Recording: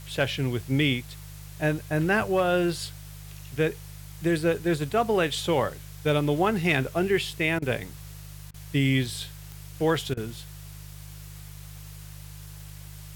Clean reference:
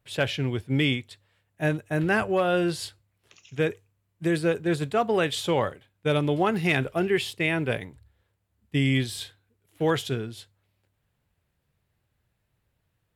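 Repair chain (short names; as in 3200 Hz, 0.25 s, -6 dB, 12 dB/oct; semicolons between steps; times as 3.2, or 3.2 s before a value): de-click; de-hum 50.8 Hz, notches 3; interpolate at 7.59/8.51/10.14, 30 ms; noise print and reduce 30 dB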